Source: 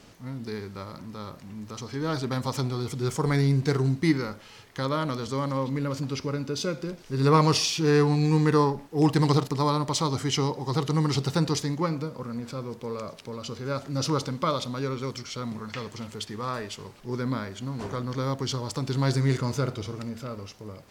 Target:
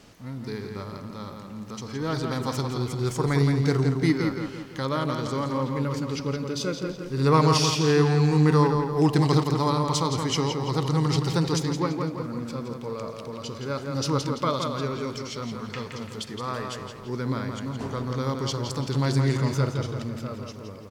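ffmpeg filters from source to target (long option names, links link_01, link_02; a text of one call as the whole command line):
ffmpeg -i in.wav -filter_complex "[0:a]asplit=2[link_01][link_02];[link_02]adelay=169,lowpass=frequency=4600:poles=1,volume=-5dB,asplit=2[link_03][link_04];[link_04]adelay=169,lowpass=frequency=4600:poles=1,volume=0.5,asplit=2[link_05][link_06];[link_06]adelay=169,lowpass=frequency=4600:poles=1,volume=0.5,asplit=2[link_07][link_08];[link_08]adelay=169,lowpass=frequency=4600:poles=1,volume=0.5,asplit=2[link_09][link_10];[link_10]adelay=169,lowpass=frequency=4600:poles=1,volume=0.5,asplit=2[link_11][link_12];[link_12]adelay=169,lowpass=frequency=4600:poles=1,volume=0.5[link_13];[link_01][link_03][link_05][link_07][link_09][link_11][link_13]amix=inputs=7:normalize=0" out.wav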